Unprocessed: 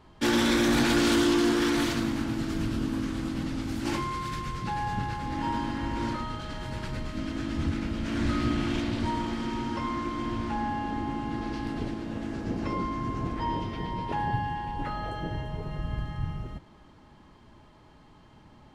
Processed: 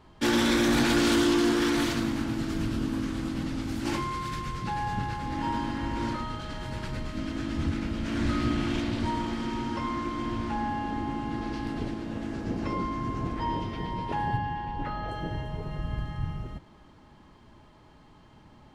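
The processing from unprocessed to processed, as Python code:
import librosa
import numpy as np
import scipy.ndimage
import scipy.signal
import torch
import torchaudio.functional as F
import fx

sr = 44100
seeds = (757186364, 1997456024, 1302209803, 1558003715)

y = fx.air_absorb(x, sr, metres=89.0, at=(14.37, 15.09))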